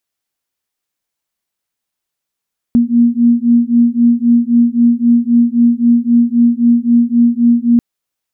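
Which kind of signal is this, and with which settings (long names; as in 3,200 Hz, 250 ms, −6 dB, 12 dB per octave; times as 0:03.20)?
two tones that beat 235 Hz, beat 3.8 Hz, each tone −10.5 dBFS 5.04 s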